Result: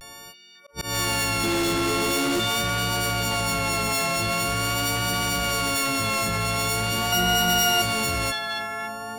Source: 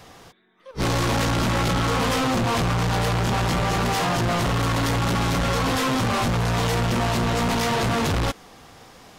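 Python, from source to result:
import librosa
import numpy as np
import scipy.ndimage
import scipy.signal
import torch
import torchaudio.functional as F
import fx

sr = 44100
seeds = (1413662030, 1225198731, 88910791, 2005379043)

p1 = fx.freq_snap(x, sr, grid_st=4)
p2 = fx.small_body(p1, sr, hz=(350.0, 3400.0), ring_ms=45, db=18, at=(1.44, 2.39))
p3 = p2 + fx.echo_stepped(p2, sr, ms=276, hz=3300.0, octaves=-0.7, feedback_pct=70, wet_db=-2.0, dry=0)
p4 = fx.auto_swell(p3, sr, attack_ms=186.0)
p5 = fx.vibrato(p4, sr, rate_hz=0.44, depth_cents=45.0)
p6 = 10.0 ** (-19.0 / 20.0) * np.tanh(p5 / 10.0 ** (-19.0 / 20.0))
p7 = fx.ripple_eq(p6, sr, per_octave=2.0, db=15, at=(7.12, 7.82))
y = F.gain(torch.from_numpy(p7), -2.0).numpy()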